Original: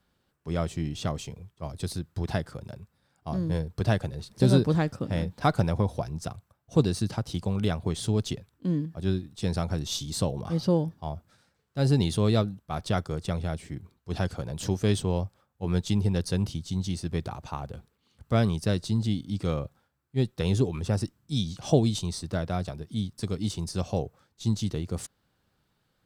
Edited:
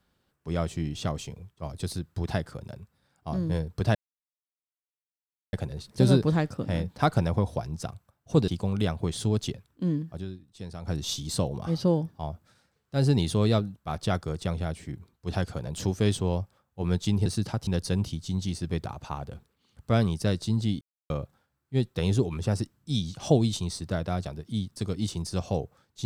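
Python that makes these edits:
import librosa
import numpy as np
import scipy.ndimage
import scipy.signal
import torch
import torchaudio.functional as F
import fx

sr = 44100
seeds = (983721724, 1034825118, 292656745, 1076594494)

y = fx.edit(x, sr, fx.insert_silence(at_s=3.95, length_s=1.58),
    fx.move(start_s=6.9, length_s=0.41, to_s=16.09),
    fx.fade_down_up(start_s=8.94, length_s=0.84, db=-11.5, fade_s=0.14, curve='qsin'),
    fx.silence(start_s=19.23, length_s=0.29), tone=tone)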